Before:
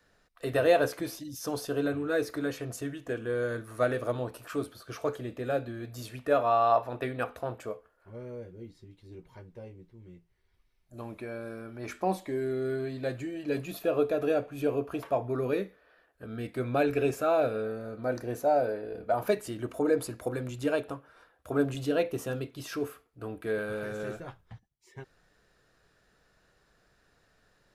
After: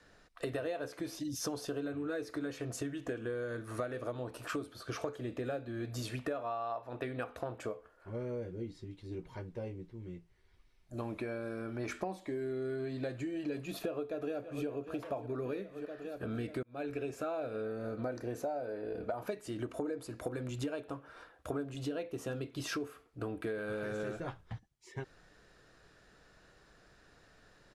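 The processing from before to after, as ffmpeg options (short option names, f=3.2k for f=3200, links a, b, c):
-filter_complex "[0:a]asplit=2[a][b];[b]afade=t=in:st=13.65:d=0.01,afade=t=out:st=14.67:d=0.01,aecho=0:1:590|1180|1770|2360|2950|3540|4130|4720:0.16788|0.117516|0.0822614|0.057583|0.0403081|0.0282157|0.019751|0.0138257[c];[a][c]amix=inputs=2:normalize=0,asplit=2[d][e];[d]atrim=end=16.63,asetpts=PTS-STARTPTS,afade=t=out:st=16.626:d=0.004:c=hsin[f];[e]atrim=start=16.63,asetpts=PTS-STARTPTS,afade=t=in:d=1.03[g];[f][g]concat=n=2:v=0:a=1,lowpass=9.4k,equalizer=f=310:t=o:w=0.34:g=3,acompressor=threshold=-39dB:ratio=12,volume=4.5dB"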